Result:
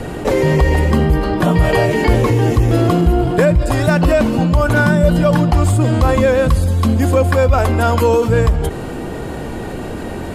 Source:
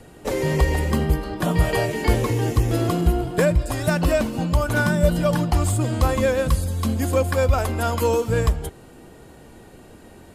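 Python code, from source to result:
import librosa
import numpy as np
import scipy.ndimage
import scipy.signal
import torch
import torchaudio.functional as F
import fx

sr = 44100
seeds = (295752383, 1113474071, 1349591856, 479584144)

y = fx.high_shelf(x, sr, hz=4500.0, db=-9.5)
y = fx.env_flatten(y, sr, amount_pct=50)
y = y * 10.0 ** (4.0 / 20.0)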